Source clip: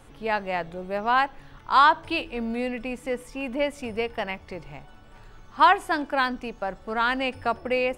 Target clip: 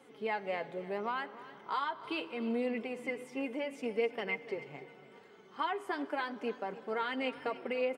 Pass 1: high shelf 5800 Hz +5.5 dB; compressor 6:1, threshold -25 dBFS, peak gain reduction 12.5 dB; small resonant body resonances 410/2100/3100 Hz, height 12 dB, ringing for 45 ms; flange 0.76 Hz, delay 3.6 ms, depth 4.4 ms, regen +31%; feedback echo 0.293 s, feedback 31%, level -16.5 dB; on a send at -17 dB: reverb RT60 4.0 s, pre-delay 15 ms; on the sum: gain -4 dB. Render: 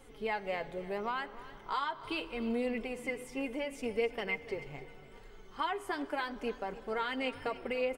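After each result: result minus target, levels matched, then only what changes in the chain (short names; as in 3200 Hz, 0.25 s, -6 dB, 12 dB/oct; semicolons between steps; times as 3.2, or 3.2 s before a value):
8000 Hz band +6.5 dB; 125 Hz band +2.5 dB
change: high shelf 5800 Hz -4.5 dB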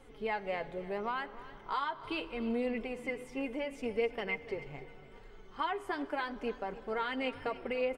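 125 Hz band +3.0 dB
add after compressor: HPF 160 Hz 24 dB/oct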